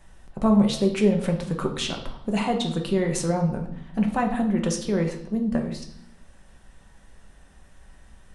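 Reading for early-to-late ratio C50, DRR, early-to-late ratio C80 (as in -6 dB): 8.5 dB, 2.0 dB, 12.0 dB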